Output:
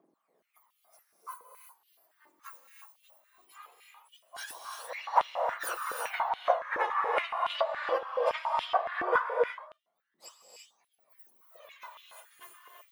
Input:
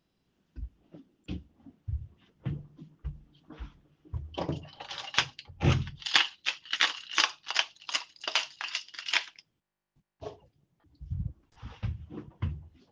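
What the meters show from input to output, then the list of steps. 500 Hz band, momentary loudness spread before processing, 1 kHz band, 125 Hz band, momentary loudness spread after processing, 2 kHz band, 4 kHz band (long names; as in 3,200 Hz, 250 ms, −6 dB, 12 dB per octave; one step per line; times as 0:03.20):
+12.0 dB, 20 LU, +9.5 dB, below −35 dB, 21 LU, −3.5 dB, −14.0 dB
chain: frequency axis turned over on the octave scale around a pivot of 1,800 Hz
high-shelf EQ 2,900 Hz −9 dB
downward compressor 6 to 1, threshold −31 dBFS, peak gain reduction 12 dB
phase shifter 0.19 Hz, delay 3.9 ms, feedback 70%
reverb whose tail is shaped and stops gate 380 ms rising, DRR 1.5 dB
high-pass on a step sequencer 7.1 Hz 340–3,100 Hz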